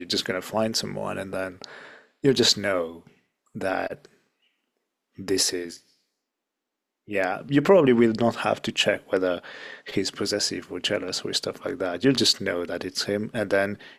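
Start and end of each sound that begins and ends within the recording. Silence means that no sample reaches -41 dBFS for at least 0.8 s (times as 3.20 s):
5.18–5.77 s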